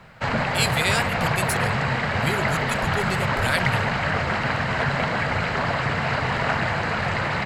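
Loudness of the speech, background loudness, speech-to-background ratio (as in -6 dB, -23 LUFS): -27.5 LUFS, -23.5 LUFS, -4.0 dB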